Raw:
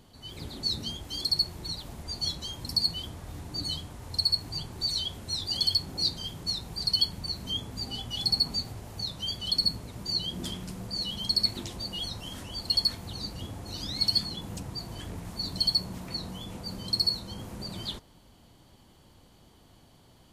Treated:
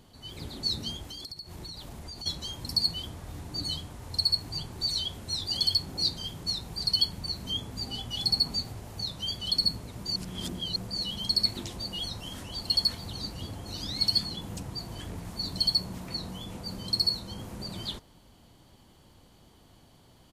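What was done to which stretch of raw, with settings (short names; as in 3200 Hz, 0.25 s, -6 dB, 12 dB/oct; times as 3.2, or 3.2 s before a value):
1.07–2.26 compressor 16:1, threshold -37 dBFS
10.16–10.76 reverse
12.08–12.67 echo throw 0.44 s, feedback 65%, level -10.5 dB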